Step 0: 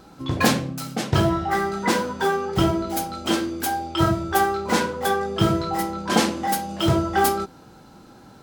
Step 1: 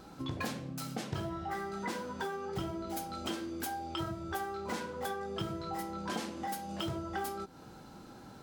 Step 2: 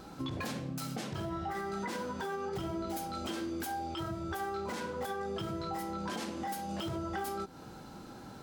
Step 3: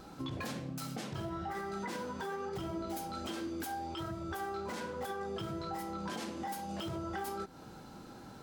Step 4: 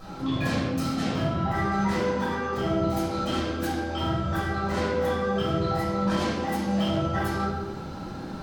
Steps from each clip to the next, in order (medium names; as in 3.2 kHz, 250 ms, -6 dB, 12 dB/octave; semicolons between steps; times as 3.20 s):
compression 5:1, threshold -32 dBFS, peak gain reduction 17 dB; trim -4 dB
peak limiter -31.5 dBFS, peak gain reduction 8.5 dB; trim +3 dB
flange 1.2 Hz, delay 0.5 ms, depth 8.7 ms, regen +90%; trim +2.5 dB
reverberation RT60 1.2 s, pre-delay 8 ms, DRR -10 dB